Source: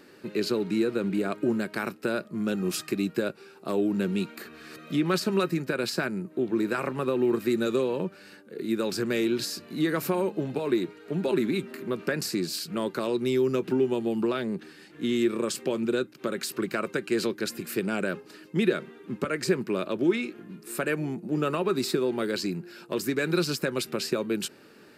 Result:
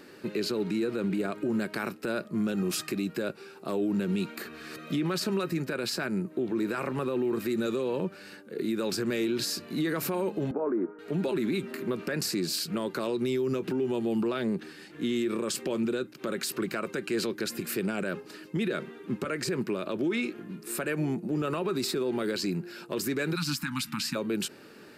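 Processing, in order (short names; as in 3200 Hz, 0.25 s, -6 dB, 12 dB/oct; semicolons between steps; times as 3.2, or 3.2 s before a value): 10.51–10.99 elliptic band-pass 220–1400 Hz, stop band 50 dB; 23.35–24.15 spectral delete 320–800 Hz; limiter -24 dBFS, peak gain reduction 12.5 dB; gain +2.5 dB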